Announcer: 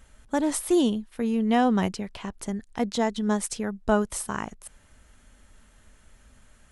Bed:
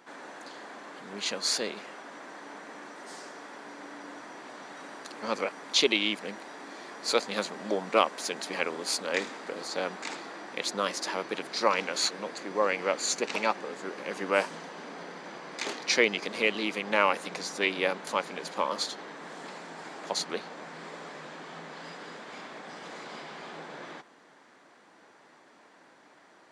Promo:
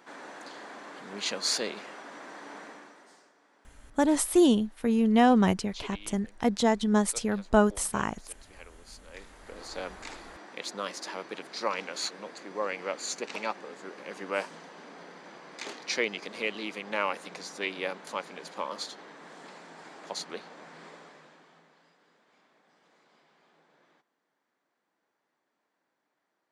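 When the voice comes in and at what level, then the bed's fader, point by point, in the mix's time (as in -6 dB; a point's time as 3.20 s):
3.65 s, +1.0 dB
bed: 2.64 s 0 dB
3.35 s -20 dB
9.10 s -20 dB
9.64 s -5.5 dB
20.87 s -5.5 dB
21.95 s -23 dB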